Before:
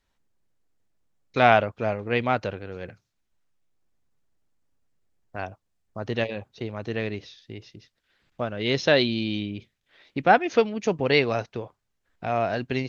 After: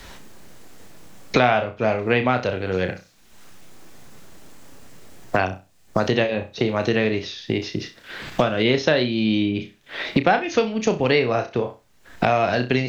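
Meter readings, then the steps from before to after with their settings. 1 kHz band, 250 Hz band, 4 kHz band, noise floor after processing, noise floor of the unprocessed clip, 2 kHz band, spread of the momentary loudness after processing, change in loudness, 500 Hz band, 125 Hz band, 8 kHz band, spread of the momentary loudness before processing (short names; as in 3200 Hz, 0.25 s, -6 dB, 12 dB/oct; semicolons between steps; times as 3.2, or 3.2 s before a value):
+1.5 dB, +6.5 dB, +3.5 dB, -54 dBFS, -77 dBFS, +3.5 dB, 11 LU, +2.5 dB, +4.0 dB, +5.5 dB, n/a, 20 LU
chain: flutter echo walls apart 5.5 m, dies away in 0.24 s; three-band squash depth 100%; gain +4.5 dB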